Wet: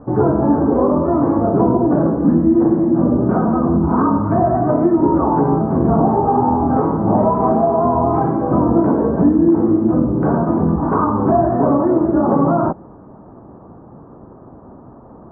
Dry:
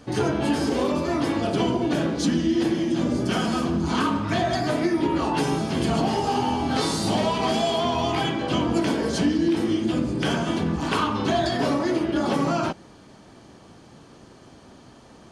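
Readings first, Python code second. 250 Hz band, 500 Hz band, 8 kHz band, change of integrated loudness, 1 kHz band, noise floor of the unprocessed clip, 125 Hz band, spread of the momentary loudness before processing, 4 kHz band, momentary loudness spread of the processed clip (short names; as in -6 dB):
+9.0 dB, +9.0 dB, under -40 dB, +8.5 dB, +8.5 dB, -49 dBFS, +9.0 dB, 2 LU, under -40 dB, 3 LU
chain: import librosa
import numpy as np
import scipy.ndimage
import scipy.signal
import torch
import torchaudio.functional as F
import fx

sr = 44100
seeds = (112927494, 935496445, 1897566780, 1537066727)

y = scipy.signal.sosfilt(scipy.signal.butter(6, 1200.0, 'lowpass', fs=sr, output='sos'), x)
y = y * 10.0 ** (9.0 / 20.0)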